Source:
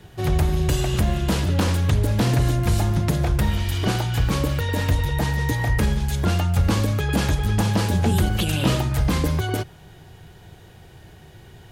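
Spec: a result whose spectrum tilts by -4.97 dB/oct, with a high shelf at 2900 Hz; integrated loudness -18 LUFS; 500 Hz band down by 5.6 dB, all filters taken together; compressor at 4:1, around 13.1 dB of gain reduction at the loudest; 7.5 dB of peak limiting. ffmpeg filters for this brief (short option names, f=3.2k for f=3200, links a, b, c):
-af "equalizer=f=500:t=o:g=-8,highshelf=f=2.9k:g=3.5,acompressor=threshold=-32dB:ratio=4,volume=19.5dB,alimiter=limit=-9dB:level=0:latency=1"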